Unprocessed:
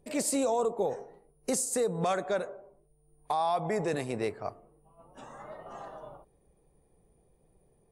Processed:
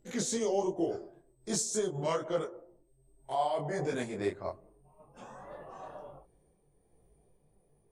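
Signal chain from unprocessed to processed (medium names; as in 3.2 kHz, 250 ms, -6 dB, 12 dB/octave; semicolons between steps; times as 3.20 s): pitch bend over the whole clip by -3.5 st ending unshifted; detune thickener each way 44 cents; trim +3 dB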